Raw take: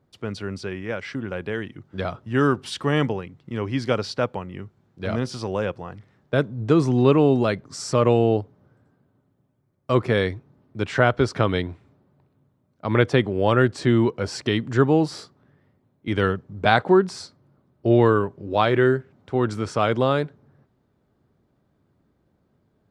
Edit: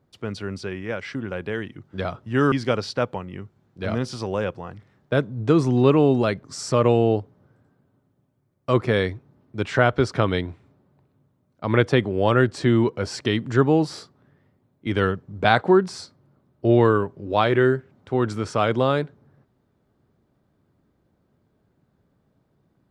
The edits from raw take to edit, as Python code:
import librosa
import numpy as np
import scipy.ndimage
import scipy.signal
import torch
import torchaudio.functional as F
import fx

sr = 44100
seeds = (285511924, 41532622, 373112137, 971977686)

y = fx.edit(x, sr, fx.cut(start_s=2.52, length_s=1.21), tone=tone)